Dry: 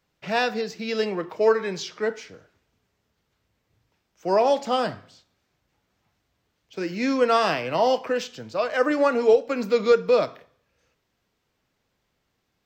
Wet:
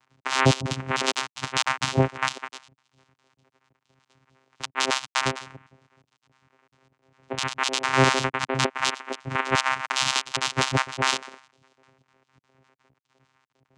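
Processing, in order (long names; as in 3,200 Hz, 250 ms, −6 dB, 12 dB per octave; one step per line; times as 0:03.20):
time-frequency cells dropped at random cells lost 67%
tilt shelving filter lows −7 dB, about 860 Hz
wrong playback speed 48 kHz file played as 44.1 kHz
in parallel at 0 dB: downward compressor, threshold −39 dBFS, peak gain reduction 20.5 dB
on the sum: voice inversion scrambler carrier 3,600 Hz
bit-depth reduction 12 bits, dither none
channel vocoder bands 4, saw 132 Hz
boost into a limiter +11.5 dB
level −6 dB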